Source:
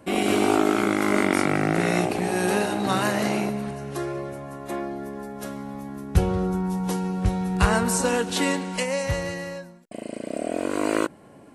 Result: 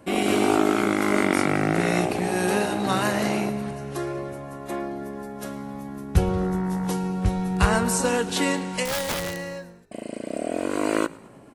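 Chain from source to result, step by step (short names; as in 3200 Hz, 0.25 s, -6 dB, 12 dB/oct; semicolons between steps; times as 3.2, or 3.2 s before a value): 6.39–6.87 buzz 60 Hz, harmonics 34, -43 dBFS -2 dB/oct; 8.85–9.4 wrapped overs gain 21 dB; frequency-shifting echo 0.109 s, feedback 51%, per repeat -48 Hz, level -21.5 dB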